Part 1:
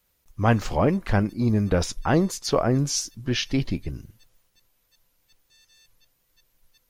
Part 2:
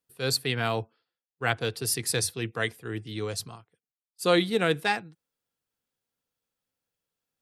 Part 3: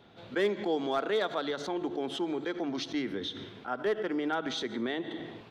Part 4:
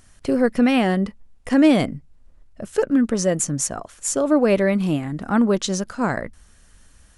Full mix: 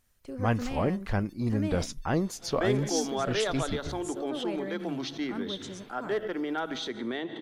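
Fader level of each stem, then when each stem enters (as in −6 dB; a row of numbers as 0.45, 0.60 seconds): −7.0 dB, muted, −0.5 dB, −19.5 dB; 0.00 s, muted, 2.25 s, 0.00 s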